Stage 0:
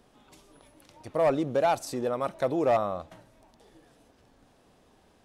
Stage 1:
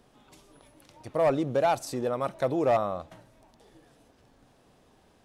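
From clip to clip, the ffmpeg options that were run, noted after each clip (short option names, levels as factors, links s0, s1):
-af "equalizer=f=130:w=4.9:g=4"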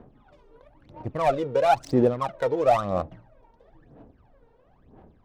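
-af "aphaser=in_gain=1:out_gain=1:delay=2.2:decay=0.77:speed=1:type=sinusoidal,adynamicsmooth=sensitivity=6.5:basefreq=1400"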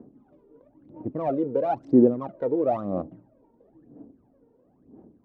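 -af "bandpass=f=280:t=q:w=2.2:csg=0,volume=2.37"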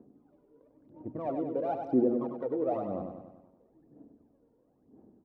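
-filter_complex "[0:a]bandreject=f=60:t=h:w=6,bandreject=f=120:t=h:w=6,bandreject=f=180:t=h:w=6,bandreject=f=240:t=h:w=6,asplit=2[s0][s1];[s1]aecho=0:1:97|194|291|388|485|582|679:0.501|0.276|0.152|0.0834|0.0459|0.0252|0.0139[s2];[s0][s2]amix=inputs=2:normalize=0,volume=0.398"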